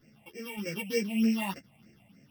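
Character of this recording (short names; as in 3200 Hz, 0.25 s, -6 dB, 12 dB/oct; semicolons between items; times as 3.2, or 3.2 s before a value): a buzz of ramps at a fixed pitch in blocks of 16 samples; phasing stages 6, 3.3 Hz, lowest notch 370–1000 Hz; random-step tremolo; a shimmering, thickened sound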